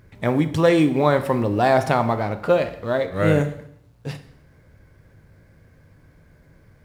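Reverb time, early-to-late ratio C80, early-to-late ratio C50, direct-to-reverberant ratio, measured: 0.70 s, 15.5 dB, 12.5 dB, 9.0 dB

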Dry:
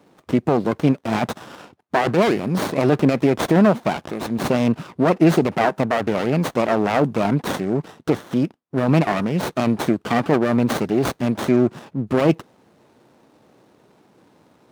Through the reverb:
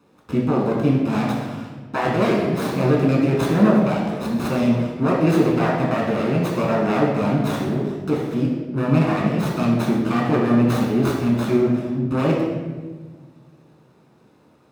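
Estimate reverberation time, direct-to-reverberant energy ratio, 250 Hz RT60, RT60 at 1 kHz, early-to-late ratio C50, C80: 1.4 s, −3.0 dB, 1.9 s, 1.2 s, 1.5 dB, 4.0 dB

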